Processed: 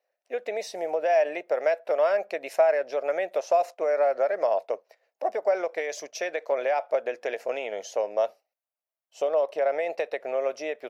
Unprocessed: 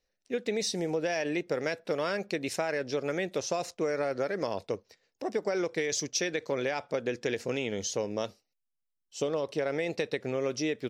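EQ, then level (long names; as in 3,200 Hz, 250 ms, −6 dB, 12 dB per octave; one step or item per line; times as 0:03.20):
high-pass with resonance 640 Hz, resonance Q 4.9
flat-topped bell 5,500 Hz −8.5 dB
0.0 dB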